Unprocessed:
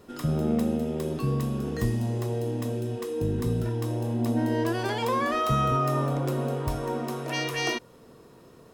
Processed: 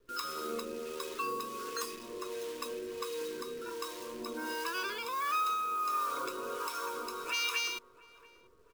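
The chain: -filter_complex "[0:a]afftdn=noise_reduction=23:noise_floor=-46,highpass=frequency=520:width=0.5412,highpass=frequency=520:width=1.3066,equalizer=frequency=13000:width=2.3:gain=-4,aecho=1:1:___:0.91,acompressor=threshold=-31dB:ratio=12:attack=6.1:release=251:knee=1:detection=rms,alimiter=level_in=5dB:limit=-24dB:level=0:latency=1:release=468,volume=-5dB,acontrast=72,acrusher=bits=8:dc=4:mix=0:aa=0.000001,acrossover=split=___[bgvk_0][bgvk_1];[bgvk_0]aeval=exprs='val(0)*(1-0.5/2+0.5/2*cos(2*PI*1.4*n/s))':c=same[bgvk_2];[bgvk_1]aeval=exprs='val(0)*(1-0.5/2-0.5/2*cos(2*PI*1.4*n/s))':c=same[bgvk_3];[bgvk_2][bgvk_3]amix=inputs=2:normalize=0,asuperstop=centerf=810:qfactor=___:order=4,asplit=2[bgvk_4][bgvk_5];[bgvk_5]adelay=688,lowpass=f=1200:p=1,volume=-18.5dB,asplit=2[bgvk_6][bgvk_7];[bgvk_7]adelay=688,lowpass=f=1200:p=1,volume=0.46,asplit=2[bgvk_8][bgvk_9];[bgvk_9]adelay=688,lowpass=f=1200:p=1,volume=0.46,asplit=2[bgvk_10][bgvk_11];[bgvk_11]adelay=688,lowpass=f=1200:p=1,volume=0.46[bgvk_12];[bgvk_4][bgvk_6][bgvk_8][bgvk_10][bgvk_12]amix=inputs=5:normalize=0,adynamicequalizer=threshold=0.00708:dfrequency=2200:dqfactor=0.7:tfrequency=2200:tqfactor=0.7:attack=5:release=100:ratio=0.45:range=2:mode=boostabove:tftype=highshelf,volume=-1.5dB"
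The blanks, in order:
0.8, 620, 2.4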